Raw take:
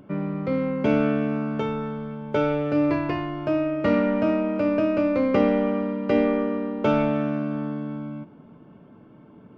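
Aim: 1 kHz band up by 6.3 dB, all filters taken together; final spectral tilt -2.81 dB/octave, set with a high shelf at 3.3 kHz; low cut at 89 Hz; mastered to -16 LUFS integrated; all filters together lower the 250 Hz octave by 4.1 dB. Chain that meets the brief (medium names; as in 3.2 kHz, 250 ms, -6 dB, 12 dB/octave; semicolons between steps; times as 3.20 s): high-pass 89 Hz; peaking EQ 250 Hz -5.5 dB; peaking EQ 1 kHz +7.5 dB; treble shelf 3.3 kHz +6 dB; trim +8 dB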